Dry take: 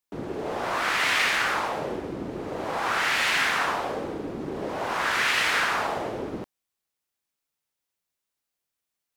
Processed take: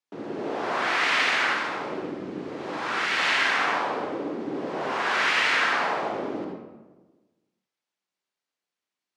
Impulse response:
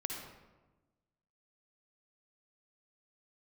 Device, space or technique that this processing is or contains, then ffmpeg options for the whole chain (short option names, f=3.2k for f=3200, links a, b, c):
supermarket ceiling speaker: -filter_complex "[0:a]highpass=200,lowpass=5.9k[a];[1:a]atrim=start_sample=2205[b];[a][b]afir=irnorm=-1:irlink=0,asettb=1/sr,asplit=3[c][d][e];[c]atrim=end=1.534[f];[d]atrim=start=1.53:end=3.17,asetpts=PTS-STARTPTS,afade=t=in:d=0.004:c=qsin,afade=t=out:st=1.636:d=0.004:c=qsin,equalizer=f=740:t=o:w=1.5:g=-5.5[g];[e]atrim=start=3.166[h];[f][g]acrossfade=d=0.004:c1=hsin:c2=qsin[i];[i][h]acrossfade=d=0.004:c1=qsin:c2=hsin"